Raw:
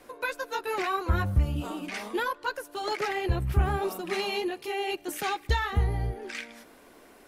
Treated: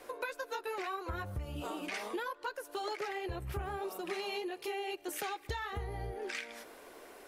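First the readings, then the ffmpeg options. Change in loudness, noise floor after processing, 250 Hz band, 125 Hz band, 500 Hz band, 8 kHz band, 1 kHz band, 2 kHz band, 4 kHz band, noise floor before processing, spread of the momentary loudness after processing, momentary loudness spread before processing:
-9.5 dB, -56 dBFS, -9.0 dB, -15.0 dB, -7.0 dB, -5.0 dB, -8.0 dB, -8.0 dB, -8.0 dB, -54 dBFS, 3 LU, 8 LU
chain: -af "lowshelf=f=310:t=q:w=1.5:g=-6.5,acompressor=threshold=-37dB:ratio=6,volume=1dB"

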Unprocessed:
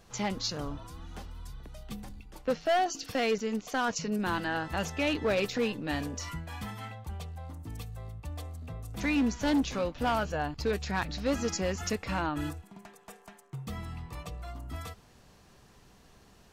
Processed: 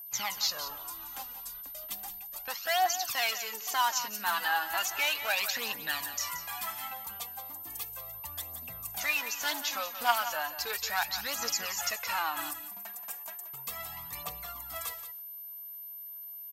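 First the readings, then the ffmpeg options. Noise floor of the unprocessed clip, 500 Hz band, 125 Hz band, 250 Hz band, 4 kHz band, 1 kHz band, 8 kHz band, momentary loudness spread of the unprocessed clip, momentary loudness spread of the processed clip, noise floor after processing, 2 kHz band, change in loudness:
-59 dBFS, -9.5 dB, -19.5 dB, -21.0 dB, +6.0 dB, +2.0 dB, +7.0 dB, 17 LU, 11 LU, -44 dBFS, +3.5 dB, 0.0 dB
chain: -filter_complex "[0:a]aemphasis=mode=production:type=bsi,agate=range=-14dB:threshold=-52dB:ratio=16:detection=peak,lowshelf=f=580:t=q:w=1.5:g=-7.5,acrossover=split=630|4000[a][b][c];[a]acompressor=threshold=-52dB:ratio=6[d];[c]alimiter=level_in=1.5dB:limit=-24dB:level=0:latency=1:release=221,volume=-1.5dB[e];[d][b][e]amix=inputs=3:normalize=0,aphaser=in_gain=1:out_gain=1:delay=4.5:decay=0.6:speed=0.35:type=triangular,aeval=exprs='val(0)+0.00794*sin(2*PI*13000*n/s)':c=same,asplit=2[f][g];[g]aecho=0:1:177:0.266[h];[f][h]amix=inputs=2:normalize=0"

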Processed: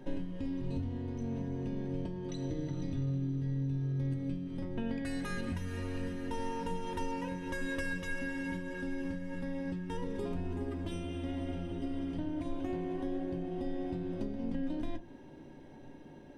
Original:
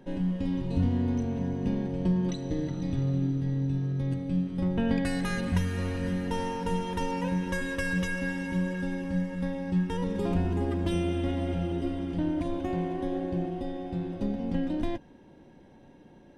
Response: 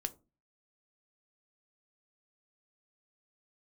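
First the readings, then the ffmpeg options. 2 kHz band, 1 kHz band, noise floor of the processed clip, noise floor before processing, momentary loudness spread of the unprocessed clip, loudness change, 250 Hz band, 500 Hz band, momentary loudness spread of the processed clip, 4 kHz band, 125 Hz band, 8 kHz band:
-6.0 dB, -7.0 dB, -51 dBFS, -54 dBFS, 4 LU, -7.5 dB, -7.5 dB, -6.5 dB, 5 LU, -7.5 dB, -7.5 dB, -7.5 dB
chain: -filter_complex "[0:a]acompressor=threshold=-35dB:ratio=6[a];[1:a]atrim=start_sample=2205[b];[a][b]afir=irnorm=-1:irlink=0,volume=1.5dB"

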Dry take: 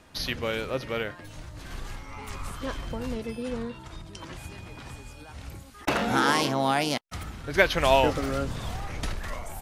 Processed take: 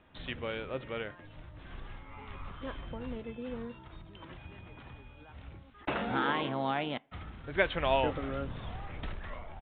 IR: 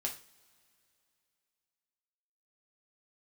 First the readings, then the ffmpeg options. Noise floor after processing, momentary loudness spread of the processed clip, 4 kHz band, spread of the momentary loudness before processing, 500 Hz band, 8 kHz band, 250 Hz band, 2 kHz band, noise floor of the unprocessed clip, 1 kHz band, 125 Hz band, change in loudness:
-54 dBFS, 20 LU, -10.0 dB, 20 LU, -7.5 dB, under -40 dB, -7.5 dB, -8.0 dB, -47 dBFS, -7.5 dB, -7.0 dB, -7.5 dB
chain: -filter_complex "[0:a]asplit=2[a][b];[1:a]atrim=start_sample=2205,lowpass=2.3k[c];[b][c]afir=irnorm=-1:irlink=0,volume=-18.5dB[d];[a][d]amix=inputs=2:normalize=0,aresample=8000,aresample=44100,volume=-8dB"

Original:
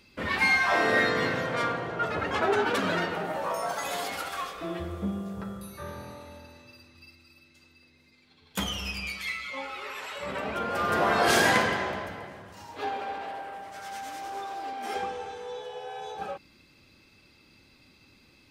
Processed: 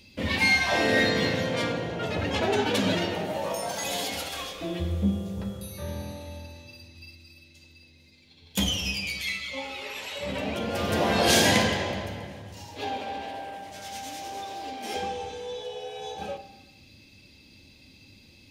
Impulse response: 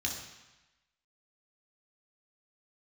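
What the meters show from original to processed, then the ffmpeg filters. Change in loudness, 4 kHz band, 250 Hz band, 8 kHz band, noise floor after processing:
+1.5 dB, +6.0 dB, +5.0 dB, +6.0 dB, -55 dBFS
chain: -filter_complex "[0:a]equalizer=f=1.3k:t=o:w=0.83:g=-11.5,asplit=2[a][b];[1:a]atrim=start_sample=2205[c];[b][c]afir=irnorm=-1:irlink=0,volume=-9.5dB[d];[a][d]amix=inputs=2:normalize=0,volume=3dB"

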